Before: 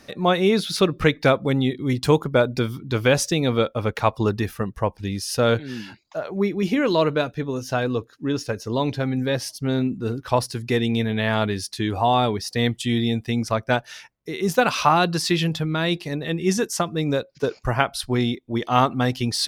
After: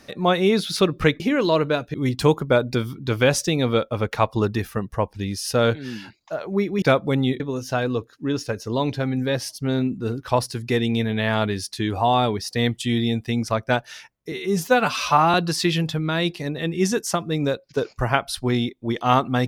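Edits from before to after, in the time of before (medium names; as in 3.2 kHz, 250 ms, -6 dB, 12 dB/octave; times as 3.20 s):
1.20–1.78 s: swap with 6.66–7.40 s
14.32–15.00 s: stretch 1.5×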